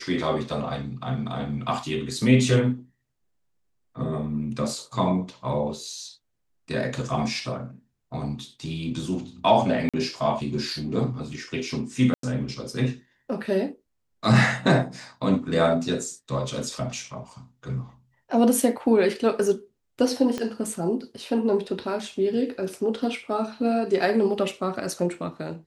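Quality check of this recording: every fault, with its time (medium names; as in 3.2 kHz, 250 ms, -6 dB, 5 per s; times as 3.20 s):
9.89–9.94 s: dropout 46 ms
12.14–12.23 s: dropout 93 ms
20.38 s: pop -15 dBFS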